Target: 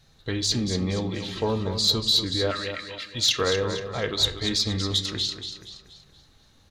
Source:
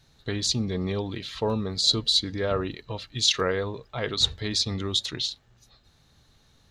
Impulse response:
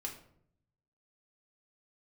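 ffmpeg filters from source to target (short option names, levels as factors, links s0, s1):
-filter_complex "[0:a]asettb=1/sr,asplit=3[s0][s1][s2];[s0]atrim=end=2.514[s3];[s1]atrim=start=2.51:end=3.15,asetpts=PTS-STARTPTS,afade=t=in:d=0.004:c=qsin,afade=t=out:st=0.636:d=0.004:c=qsin,highpass=f=1900:t=q:w=2.6[s4];[s2]atrim=start=3.146[s5];[s3][s4]acrossfade=d=0.004:c1=hsin:c2=qsin[s6];[s6][s5]acrossfade=d=0.004:c1=qsin:c2=hsin,aecho=1:1:237|474|711|948|1185:0.355|0.153|0.0656|0.0282|0.0121,asplit=2[s7][s8];[1:a]atrim=start_sample=2205[s9];[s8][s9]afir=irnorm=-1:irlink=0,volume=0.668[s10];[s7][s10]amix=inputs=2:normalize=0,flanger=delay=1.6:depth=2.3:regen=-76:speed=0.51:shape=sinusoidal,asoftclip=type=tanh:threshold=0.224,volume=1.33"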